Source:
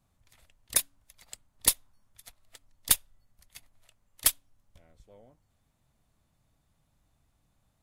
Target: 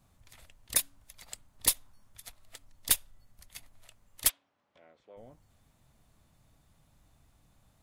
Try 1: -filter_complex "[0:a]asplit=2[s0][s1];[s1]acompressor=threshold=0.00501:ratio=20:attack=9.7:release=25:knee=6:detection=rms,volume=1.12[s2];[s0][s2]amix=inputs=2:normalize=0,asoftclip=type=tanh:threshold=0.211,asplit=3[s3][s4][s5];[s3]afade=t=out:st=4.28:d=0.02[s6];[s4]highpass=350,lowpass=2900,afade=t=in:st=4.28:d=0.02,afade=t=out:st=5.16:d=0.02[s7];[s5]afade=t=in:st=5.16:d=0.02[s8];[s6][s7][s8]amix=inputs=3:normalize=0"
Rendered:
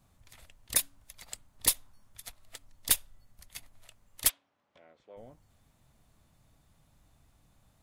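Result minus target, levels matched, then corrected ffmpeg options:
compression: peak gain reduction -9 dB
-filter_complex "[0:a]asplit=2[s0][s1];[s1]acompressor=threshold=0.00168:ratio=20:attack=9.7:release=25:knee=6:detection=rms,volume=1.12[s2];[s0][s2]amix=inputs=2:normalize=0,asoftclip=type=tanh:threshold=0.211,asplit=3[s3][s4][s5];[s3]afade=t=out:st=4.28:d=0.02[s6];[s4]highpass=350,lowpass=2900,afade=t=in:st=4.28:d=0.02,afade=t=out:st=5.16:d=0.02[s7];[s5]afade=t=in:st=5.16:d=0.02[s8];[s6][s7][s8]amix=inputs=3:normalize=0"

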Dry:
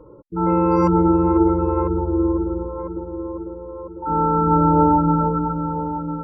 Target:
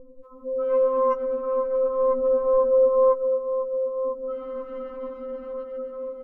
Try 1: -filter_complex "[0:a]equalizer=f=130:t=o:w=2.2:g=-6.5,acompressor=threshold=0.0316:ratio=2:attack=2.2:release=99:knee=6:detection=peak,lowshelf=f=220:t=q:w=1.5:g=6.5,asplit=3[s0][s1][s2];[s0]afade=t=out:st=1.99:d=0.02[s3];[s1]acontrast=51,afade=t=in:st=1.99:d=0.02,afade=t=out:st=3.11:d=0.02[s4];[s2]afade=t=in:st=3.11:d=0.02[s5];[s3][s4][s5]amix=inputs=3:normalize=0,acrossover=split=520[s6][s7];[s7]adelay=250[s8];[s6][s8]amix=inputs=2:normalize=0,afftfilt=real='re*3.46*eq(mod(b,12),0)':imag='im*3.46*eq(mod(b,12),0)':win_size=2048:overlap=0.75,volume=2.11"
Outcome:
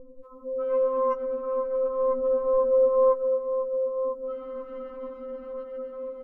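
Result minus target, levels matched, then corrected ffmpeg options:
compression: peak gain reduction +3.5 dB
-filter_complex "[0:a]equalizer=f=130:t=o:w=2.2:g=-6.5,acompressor=threshold=0.0668:ratio=2:attack=2.2:release=99:knee=6:detection=peak,lowshelf=f=220:t=q:w=1.5:g=6.5,asplit=3[s0][s1][s2];[s0]afade=t=out:st=1.99:d=0.02[s3];[s1]acontrast=51,afade=t=in:st=1.99:d=0.02,afade=t=out:st=3.11:d=0.02[s4];[s2]afade=t=in:st=3.11:d=0.02[s5];[s3][s4][s5]amix=inputs=3:normalize=0,acrossover=split=520[s6][s7];[s7]adelay=250[s8];[s6][s8]amix=inputs=2:normalize=0,afftfilt=real='re*3.46*eq(mod(b,12),0)':imag='im*3.46*eq(mod(b,12),0)':win_size=2048:overlap=0.75,volume=2.11"

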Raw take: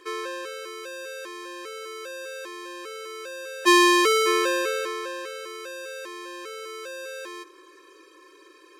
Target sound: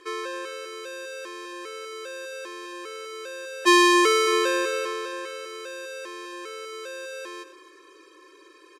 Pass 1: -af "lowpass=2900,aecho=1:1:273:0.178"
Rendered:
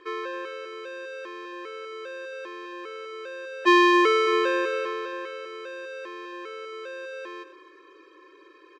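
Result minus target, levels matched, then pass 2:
8 kHz band -14.5 dB
-af "lowpass=11000,aecho=1:1:273:0.178"

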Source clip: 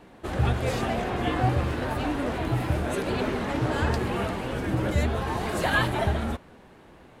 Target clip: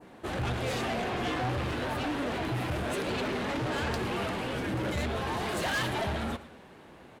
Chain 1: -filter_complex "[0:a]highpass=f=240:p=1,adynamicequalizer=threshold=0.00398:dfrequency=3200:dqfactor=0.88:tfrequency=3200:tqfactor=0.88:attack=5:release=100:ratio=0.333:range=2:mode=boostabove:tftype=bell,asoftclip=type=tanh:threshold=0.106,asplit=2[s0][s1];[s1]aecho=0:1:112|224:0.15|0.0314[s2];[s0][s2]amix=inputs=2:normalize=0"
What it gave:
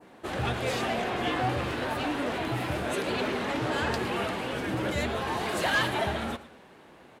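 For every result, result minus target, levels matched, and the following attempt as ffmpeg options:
saturation: distortion -8 dB; 125 Hz band -3.0 dB
-filter_complex "[0:a]highpass=f=240:p=1,adynamicequalizer=threshold=0.00398:dfrequency=3200:dqfactor=0.88:tfrequency=3200:tqfactor=0.88:attack=5:release=100:ratio=0.333:range=2:mode=boostabove:tftype=bell,asoftclip=type=tanh:threshold=0.0422,asplit=2[s0][s1];[s1]aecho=0:1:112|224:0.15|0.0314[s2];[s0][s2]amix=inputs=2:normalize=0"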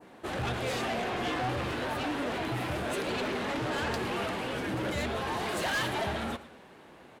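125 Hz band -3.0 dB
-filter_complex "[0:a]highpass=f=100:p=1,adynamicequalizer=threshold=0.00398:dfrequency=3200:dqfactor=0.88:tfrequency=3200:tqfactor=0.88:attack=5:release=100:ratio=0.333:range=2:mode=boostabove:tftype=bell,asoftclip=type=tanh:threshold=0.0422,asplit=2[s0][s1];[s1]aecho=0:1:112|224:0.15|0.0314[s2];[s0][s2]amix=inputs=2:normalize=0"

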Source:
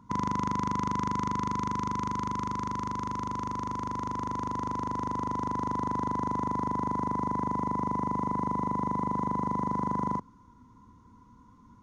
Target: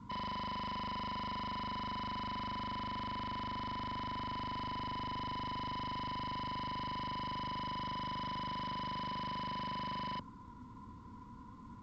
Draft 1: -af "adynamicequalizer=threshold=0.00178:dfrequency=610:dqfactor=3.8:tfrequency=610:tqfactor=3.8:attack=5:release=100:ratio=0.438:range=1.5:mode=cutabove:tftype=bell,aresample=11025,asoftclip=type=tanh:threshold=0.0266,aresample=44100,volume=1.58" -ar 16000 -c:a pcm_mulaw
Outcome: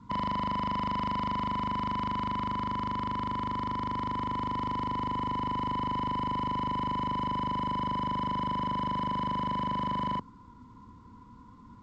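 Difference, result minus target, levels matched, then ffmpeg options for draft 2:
saturation: distortion -6 dB
-af "adynamicequalizer=threshold=0.00178:dfrequency=610:dqfactor=3.8:tfrequency=610:tqfactor=3.8:attack=5:release=100:ratio=0.438:range=1.5:mode=cutabove:tftype=bell,aresample=11025,asoftclip=type=tanh:threshold=0.00708,aresample=44100,volume=1.58" -ar 16000 -c:a pcm_mulaw

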